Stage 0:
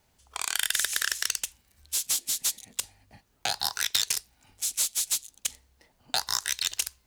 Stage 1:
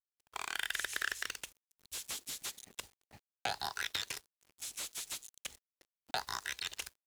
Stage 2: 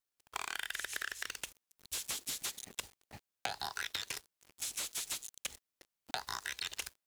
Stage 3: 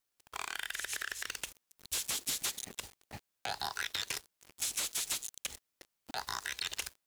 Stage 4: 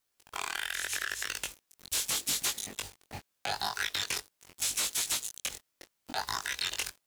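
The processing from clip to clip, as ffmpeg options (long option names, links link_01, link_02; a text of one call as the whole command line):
ffmpeg -i in.wav -filter_complex "[0:a]acrossover=split=3100[link_01][link_02];[link_02]acompressor=threshold=-36dB:ratio=4:attack=1:release=60[link_03];[link_01][link_03]amix=inputs=2:normalize=0,aeval=exprs='val(0)*gte(abs(val(0)),0.00282)':channel_layout=same,equalizer=frequency=390:width=1.7:gain=3.5,volume=-4.5dB" out.wav
ffmpeg -i in.wav -af "acompressor=threshold=-41dB:ratio=6,volume=6dB" out.wav
ffmpeg -i in.wav -af "alimiter=level_in=4dB:limit=-24dB:level=0:latency=1:release=48,volume=-4dB,volume=5dB" out.wav
ffmpeg -i in.wav -af "flanger=delay=19:depth=3.4:speed=0.79,volume=7.5dB" out.wav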